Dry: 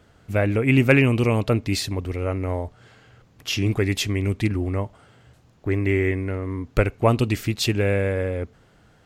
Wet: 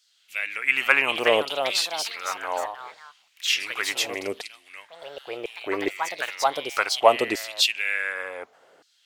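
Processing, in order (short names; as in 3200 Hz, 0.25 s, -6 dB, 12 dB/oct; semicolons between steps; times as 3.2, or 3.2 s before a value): LFO high-pass saw down 0.68 Hz 440–4800 Hz; echoes that change speed 0.511 s, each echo +3 st, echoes 3, each echo -6 dB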